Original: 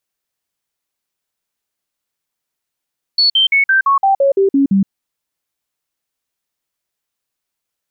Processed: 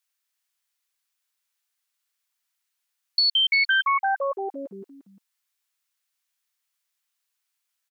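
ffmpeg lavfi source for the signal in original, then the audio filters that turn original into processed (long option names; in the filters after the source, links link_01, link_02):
-f lavfi -i "aevalsrc='0.376*clip(min(mod(t,0.17),0.12-mod(t,0.17))/0.005,0,1)*sin(2*PI*4420*pow(2,-floor(t/0.17)/2)*mod(t,0.17))':duration=1.7:sample_rate=44100"
-filter_complex "[0:a]highpass=1200,acompressor=threshold=-23dB:ratio=2.5,asplit=2[link_01][link_02];[link_02]aecho=0:1:352:0.335[link_03];[link_01][link_03]amix=inputs=2:normalize=0"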